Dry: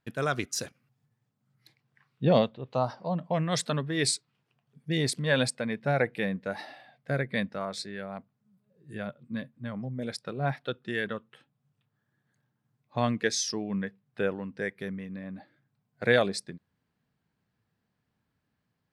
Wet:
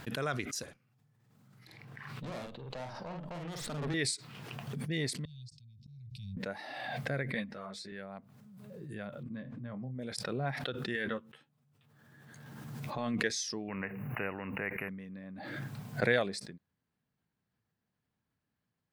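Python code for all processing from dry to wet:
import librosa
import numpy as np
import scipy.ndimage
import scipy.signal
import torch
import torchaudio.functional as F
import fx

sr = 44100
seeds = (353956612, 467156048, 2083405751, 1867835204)

y = fx.chain(x, sr, fx.tube_stage(drive_db=34.0, bias=0.5),
    fx.doubler(ms=47.0, db=-3.5),
    fx.band_squash(depth_pct=40), at=(0.63, 3.94))
y = fx.chain(y, sr, fx.cheby2_bandstop(low_hz=310.0, high_hz=1900.0, order=4, stop_db=60),
    fx.air_absorb(metres=210.0),
    fx.auto_swell(attack_ms=332.0), at=(5.25, 6.37))
y = fx.chain(y, sr, fx.highpass(hz=47.0, slope=12),
    fx.ensemble(), at=(7.34, 7.92))
y = fx.chain(y, sr, fx.spacing_loss(db_at_10k=23),
    fx.doubler(ms=24.0, db=-9.5), at=(9.23, 9.95))
y = fx.chain(y, sr, fx.over_compress(threshold_db=-32.0, ratio=-1.0),
    fx.doubler(ms=13.0, db=-6.5), at=(10.94, 13.15))
y = fx.chain(y, sr, fx.brickwall_bandstop(low_hz=2900.0, high_hz=11000.0),
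    fx.spectral_comp(ratio=2.0), at=(13.68, 14.89))
y = fx.dynamic_eq(y, sr, hz=2000.0, q=3.1, threshold_db=-45.0, ratio=4.0, max_db=4)
y = fx.pre_swell(y, sr, db_per_s=27.0)
y = y * librosa.db_to_amplitude(-7.0)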